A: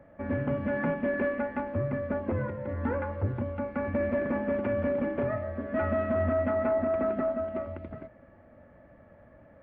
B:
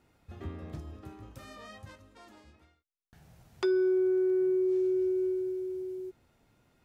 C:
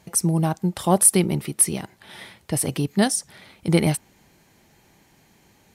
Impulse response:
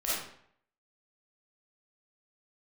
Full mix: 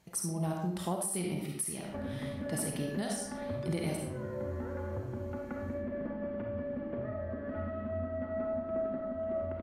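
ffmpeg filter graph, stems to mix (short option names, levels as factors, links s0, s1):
-filter_complex "[0:a]acrossover=split=350|3000[s0][s1][s2];[s1]acompressor=threshold=0.0112:ratio=3[s3];[s0][s3][s2]amix=inputs=3:normalize=0,equalizer=f=2400:w=3.8:g=-6.5,acompressor=threshold=0.0126:ratio=6,adelay=1750,volume=0.75,asplit=2[s4][s5];[s5]volume=0.596[s6];[1:a]volume=0.112[s7];[2:a]volume=0.178,asplit=2[s8][s9];[s9]volume=0.668[s10];[3:a]atrim=start_sample=2205[s11];[s6][s10]amix=inputs=2:normalize=0[s12];[s12][s11]afir=irnorm=-1:irlink=0[s13];[s4][s7][s8][s13]amix=inputs=4:normalize=0,alimiter=limit=0.0631:level=0:latency=1:release=308"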